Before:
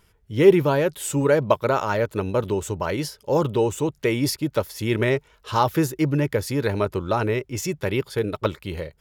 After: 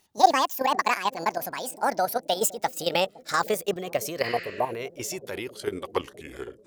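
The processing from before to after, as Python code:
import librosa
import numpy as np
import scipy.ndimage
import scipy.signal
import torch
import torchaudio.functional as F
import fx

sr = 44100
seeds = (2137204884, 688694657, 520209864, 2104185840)

y = fx.speed_glide(x, sr, from_pct=198, to_pct=72)
y = fx.bass_treble(y, sr, bass_db=-13, treble_db=6)
y = fx.level_steps(y, sr, step_db=11)
y = fx.spec_repair(y, sr, seeds[0], start_s=4.27, length_s=0.43, low_hz=1200.0, high_hz=7900.0, source='both')
y = fx.echo_bbd(y, sr, ms=513, stages=2048, feedback_pct=72, wet_db=-17.0)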